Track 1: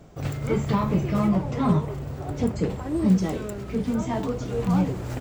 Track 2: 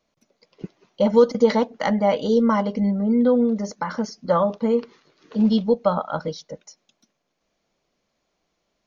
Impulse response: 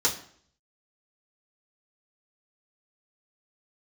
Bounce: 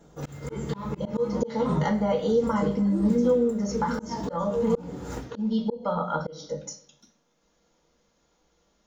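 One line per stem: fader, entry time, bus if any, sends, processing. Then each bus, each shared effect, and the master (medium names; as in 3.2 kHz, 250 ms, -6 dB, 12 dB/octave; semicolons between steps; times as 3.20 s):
+2.0 dB, 0.00 s, send -5 dB, upward expansion 1.5:1, over -40 dBFS; auto duck -10 dB, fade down 0.75 s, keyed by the second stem
-3.5 dB, 0.00 s, send -4 dB, bass shelf 68 Hz +12 dB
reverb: on, RT60 0.55 s, pre-delay 3 ms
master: slow attack 320 ms; compression 2:1, threshold -30 dBFS, peak gain reduction 14 dB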